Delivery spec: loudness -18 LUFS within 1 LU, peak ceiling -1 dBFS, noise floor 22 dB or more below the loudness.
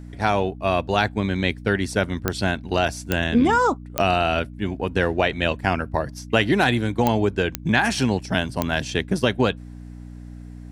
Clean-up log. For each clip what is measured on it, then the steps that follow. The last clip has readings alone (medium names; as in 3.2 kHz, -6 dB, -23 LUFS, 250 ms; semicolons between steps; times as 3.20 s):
clicks found 6; hum 60 Hz; highest harmonic 300 Hz; hum level -36 dBFS; loudness -22.5 LUFS; peak level -3.0 dBFS; loudness target -18.0 LUFS
-> de-click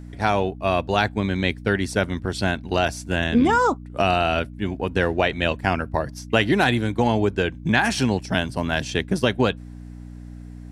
clicks found 0; hum 60 Hz; highest harmonic 300 Hz; hum level -36 dBFS
-> de-hum 60 Hz, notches 5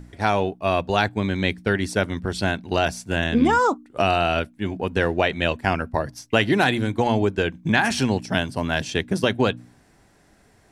hum not found; loudness -22.5 LUFS; peak level -3.5 dBFS; loudness target -18.0 LUFS
-> trim +4.5 dB; peak limiter -1 dBFS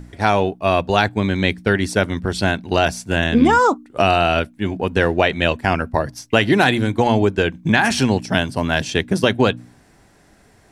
loudness -18.0 LUFS; peak level -1.0 dBFS; noise floor -53 dBFS